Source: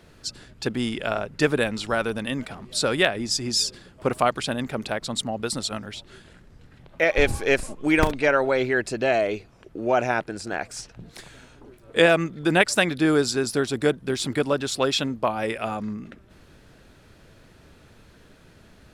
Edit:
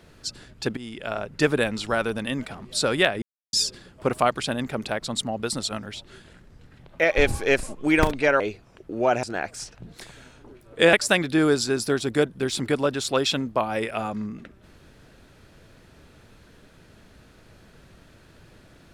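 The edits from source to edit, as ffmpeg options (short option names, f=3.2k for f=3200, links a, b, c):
-filter_complex "[0:a]asplit=7[a][b][c][d][e][f][g];[a]atrim=end=0.77,asetpts=PTS-STARTPTS,afade=t=out:st=0.766:d=0.004:c=hsin:silence=0.16788[h];[b]atrim=start=0.77:end=3.22,asetpts=PTS-STARTPTS,afade=t=in:d=0.6:silence=0.16788,afade=t=out:st=2.446:d=0.004:c=hsin[i];[c]atrim=start=3.22:end=3.53,asetpts=PTS-STARTPTS,volume=0[j];[d]atrim=start=3.53:end=8.402,asetpts=PTS-STARTPTS,afade=t=in:d=0.004:c=hsin[k];[e]atrim=start=9.258:end=10.092[l];[f]atrim=start=10.398:end=12.102[m];[g]atrim=start=12.598[n];[h][i][j][k]concat=n=4:v=0:a=1[o];[o][l]acrossfade=d=0.004:c1=hsin:c2=hsin[p];[p][m]acrossfade=d=0.004:c1=hsin:c2=hsin[q];[q][n]acrossfade=d=0.004:c1=hsin:c2=hsin"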